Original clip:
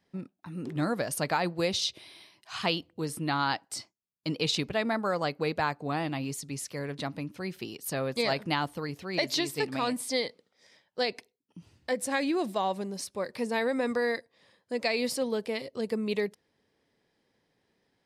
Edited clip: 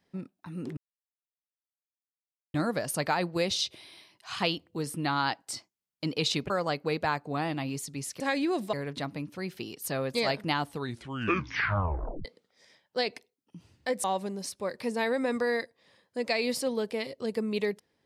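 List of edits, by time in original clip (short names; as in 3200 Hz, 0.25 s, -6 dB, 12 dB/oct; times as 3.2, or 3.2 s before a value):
0.77 insert silence 1.77 s
4.73–5.05 cut
8.68 tape stop 1.59 s
12.06–12.59 move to 6.75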